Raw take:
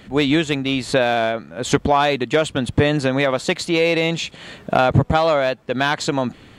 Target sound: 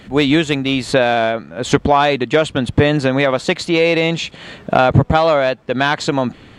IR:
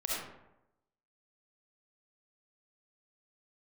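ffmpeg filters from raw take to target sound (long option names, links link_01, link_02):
-af "asetnsamples=nb_out_samples=441:pad=0,asendcmd='0.92 highshelf g -12',highshelf=frequency=9600:gain=-3.5,volume=3.5dB"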